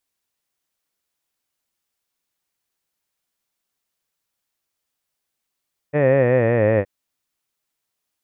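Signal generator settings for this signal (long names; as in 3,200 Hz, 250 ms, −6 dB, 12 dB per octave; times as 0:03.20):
vowel by formant synthesis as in head, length 0.92 s, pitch 144 Hz, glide −6 semitones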